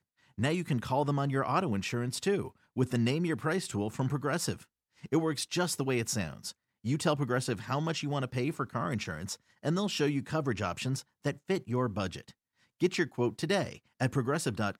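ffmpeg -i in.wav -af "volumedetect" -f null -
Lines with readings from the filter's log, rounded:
mean_volume: -32.2 dB
max_volume: -14.6 dB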